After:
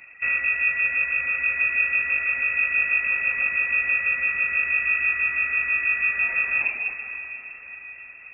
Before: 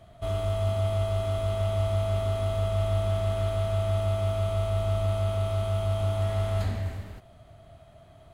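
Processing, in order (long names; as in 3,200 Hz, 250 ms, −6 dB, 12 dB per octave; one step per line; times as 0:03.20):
voice inversion scrambler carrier 2,600 Hz
reverb reduction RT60 0.9 s
feedback delay with all-pass diffusion 616 ms, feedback 52%, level −12 dB
level +5.5 dB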